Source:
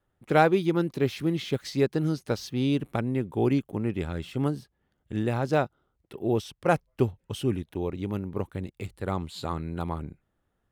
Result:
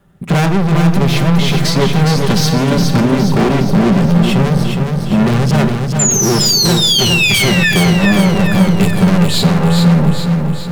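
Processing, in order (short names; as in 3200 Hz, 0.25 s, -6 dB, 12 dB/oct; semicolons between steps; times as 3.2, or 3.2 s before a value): bell 170 Hz +14 dB 0.61 oct; vocal rider 2 s; tube stage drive 29 dB, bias 0.55; 5.99–7.72 painted sound fall 1700–7300 Hz -37 dBFS; 6.45–8.92 high shelf 5000 Hz +8 dB; overloaded stage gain 34 dB; reverb RT60 0.95 s, pre-delay 5 ms, DRR 8 dB; maximiser +30.5 dB; lo-fi delay 0.413 s, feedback 55%, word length 7-bit, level -5 dB; gain -6 dB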